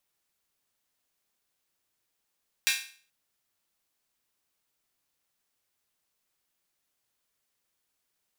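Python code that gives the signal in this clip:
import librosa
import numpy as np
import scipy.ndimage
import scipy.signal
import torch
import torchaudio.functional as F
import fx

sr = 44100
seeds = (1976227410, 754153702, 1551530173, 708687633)

y = fx.drum_hat_open(sr, length_s=0.43, from_hz=2100.0, decay_s=0.44)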